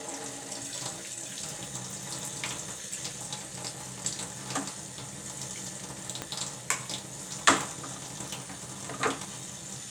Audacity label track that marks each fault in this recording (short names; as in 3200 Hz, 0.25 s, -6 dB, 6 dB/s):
6.220000	6.220000	pop -17 dBFS